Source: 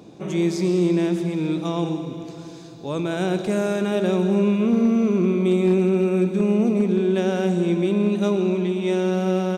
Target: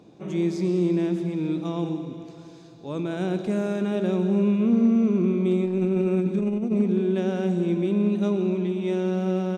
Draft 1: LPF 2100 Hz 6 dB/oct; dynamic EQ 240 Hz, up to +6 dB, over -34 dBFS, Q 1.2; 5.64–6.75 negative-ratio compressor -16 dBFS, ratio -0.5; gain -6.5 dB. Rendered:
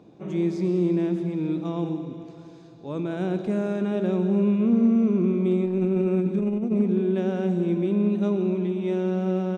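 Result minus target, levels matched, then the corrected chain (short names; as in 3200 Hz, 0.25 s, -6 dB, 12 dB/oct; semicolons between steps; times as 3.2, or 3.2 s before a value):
8000 Hz band -6.5 dB
LPF 5700 Hz 6 dB/oct; dynamic EQ 240 Hz, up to +6 dB, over -34 dBFS, Q 1.2; 5.64–6.75 negative-ratio compressor -16 dBFS, ratio -0.5; gain -6.5 dB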